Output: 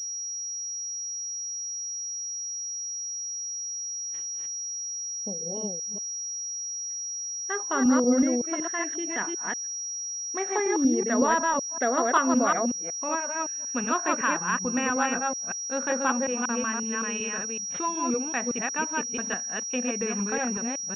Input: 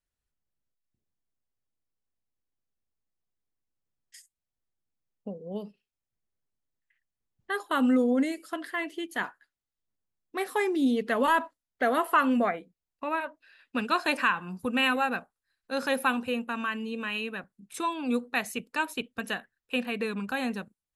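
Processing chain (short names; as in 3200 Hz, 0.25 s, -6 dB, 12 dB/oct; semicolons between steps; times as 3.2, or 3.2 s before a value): reverse delay 0.187 s, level -1.5 dB; treble ducked by the level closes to 2100 Hz, closed at -22.5 dBFS; pulse-width modulation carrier 5700 Hz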